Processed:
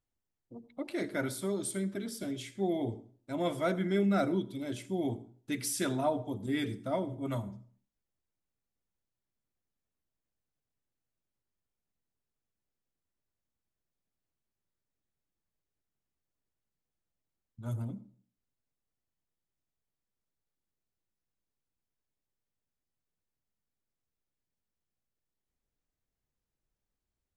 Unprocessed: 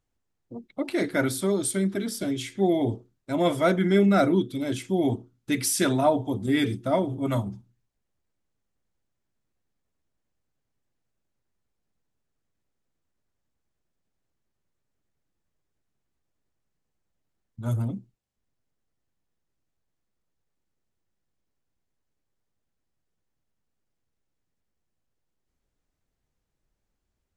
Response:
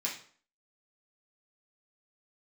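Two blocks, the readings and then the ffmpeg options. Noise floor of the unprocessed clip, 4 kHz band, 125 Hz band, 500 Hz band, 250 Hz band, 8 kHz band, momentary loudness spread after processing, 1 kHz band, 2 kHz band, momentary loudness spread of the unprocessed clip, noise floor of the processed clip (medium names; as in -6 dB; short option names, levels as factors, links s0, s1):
-80 dBFS, -9.0 dB, -9.0 dB, -9.0 dB, -8.5 dB, -9.0 dB, 14 LU, -9.0 dB, -9.0 dB, 13 LU, under -85 dBFS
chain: -filter_complex "[0:a]asplit=2[s0][s1];[s1]equalizer=f=2800:t=o:w=2.1:g=-12[s2];[1:a]atrim=start_sample=2205,adelay=78[s3];[s2][s3]afir=irnorm=-1:irlink=0,volume=0.178[s4];[s0][s4]amix=inputs=2:normalize=0,volume=0.355"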